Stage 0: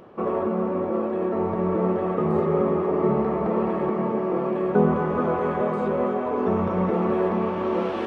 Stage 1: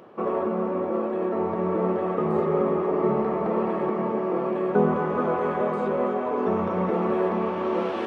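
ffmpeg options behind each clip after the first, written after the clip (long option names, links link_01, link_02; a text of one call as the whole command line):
ffmpeg -i in.wav -af "highpass=frequency=200:poles=1" out.wav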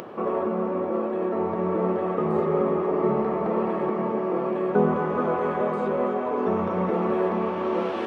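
ffmpeg -i in.wav -af "acompressor=mode=upward:threshold=-30dB:ratio=2.5" out.wav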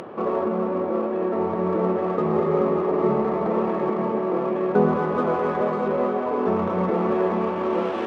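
ffmpeg -i in.wav -af "adynamicsmooth=sensitivity=7:basefreq=3200,volume=2dB" out.wav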